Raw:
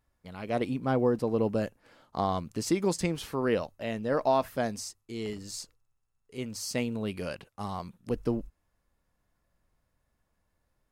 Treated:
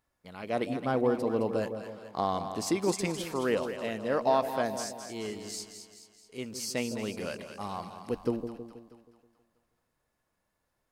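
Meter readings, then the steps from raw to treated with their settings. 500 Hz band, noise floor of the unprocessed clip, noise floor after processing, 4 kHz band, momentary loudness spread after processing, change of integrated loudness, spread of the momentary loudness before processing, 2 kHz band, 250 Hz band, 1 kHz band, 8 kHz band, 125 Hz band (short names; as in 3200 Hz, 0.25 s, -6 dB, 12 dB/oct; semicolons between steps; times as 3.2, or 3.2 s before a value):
0.0 dB, -78 dBFS, -80 dBFS, +0.5 dB, 14 LU, -0.5 dB, 13 LU, +0.5 dB, -2.0 dB, +0.5 dB, +1.0 dB, -5.0 dB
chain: low shelf 130 Hz -12 dB; on a send: split-band echo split 700 Hz, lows 0.16 s, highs 0.215 s, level -8.5 dB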